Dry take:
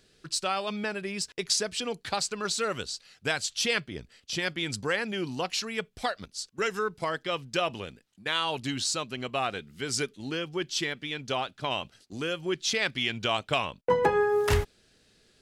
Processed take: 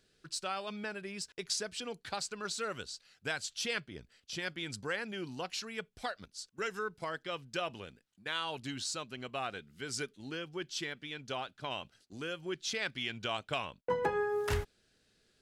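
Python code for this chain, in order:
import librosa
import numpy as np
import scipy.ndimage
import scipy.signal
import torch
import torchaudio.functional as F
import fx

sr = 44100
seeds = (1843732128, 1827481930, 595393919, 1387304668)

y = fx.peak_eq(x, sr, hz=1500.0, db=4.0, octaves=0.22)
y = y * librosa.db_to_amplitude(-8.5)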